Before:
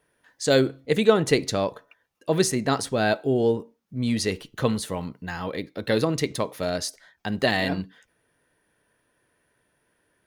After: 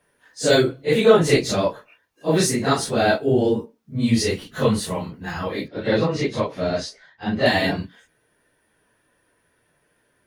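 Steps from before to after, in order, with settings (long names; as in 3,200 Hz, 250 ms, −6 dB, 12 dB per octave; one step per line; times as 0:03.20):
random phases in long frames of 100 ms
0:05.68–0:07.46: high-frequency loss of the air 120 metres
level +4 dB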